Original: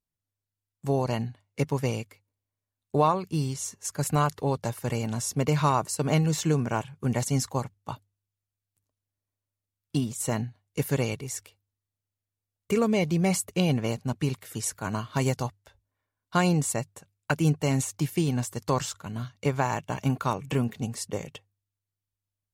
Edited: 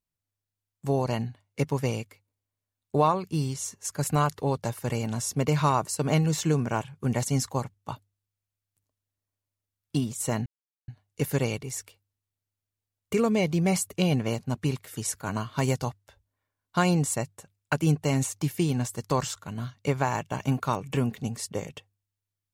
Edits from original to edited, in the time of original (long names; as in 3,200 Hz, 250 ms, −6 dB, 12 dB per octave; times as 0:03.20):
0:10.46: splice in silence 0.42 s